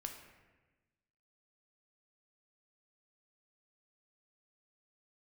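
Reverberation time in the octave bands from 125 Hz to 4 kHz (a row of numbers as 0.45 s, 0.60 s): 1.5 s, 1.5 s, 1.3 s, 1.1 s, 1.2 s, 0.85 s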